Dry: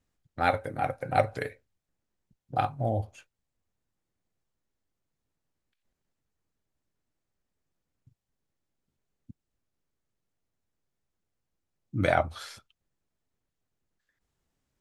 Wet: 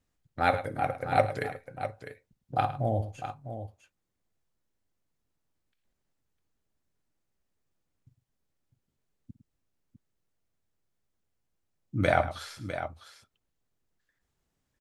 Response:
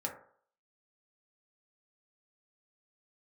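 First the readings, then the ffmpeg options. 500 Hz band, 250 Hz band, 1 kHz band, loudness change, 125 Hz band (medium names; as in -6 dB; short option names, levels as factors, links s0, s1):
+0.5 dB, +0.5 dB, +0.5 dB, -1.5 dB, +0.5 dB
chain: -af "aecho=1:1:56|106|653:0.119|0.2|0.299"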